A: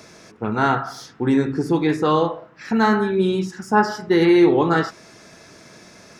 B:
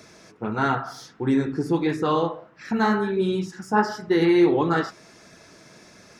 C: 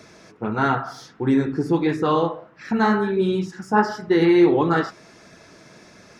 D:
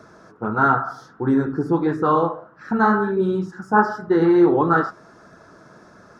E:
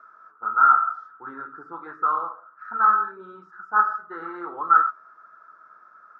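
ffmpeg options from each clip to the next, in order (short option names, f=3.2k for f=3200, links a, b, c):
-af "flanger=delay=0.5:depth=6.3:regen=-52:speed=1.5:shape=sinusoidal"
-af "highshelf=f=5.7k:g=-6.5,volume=2.5dB"
-af "highshelf=f=1.8k:t=q:w=3:g=-8"
-af "bandpass=f=1.3k:t=q:w=11:csg=0,volume=7.5dB"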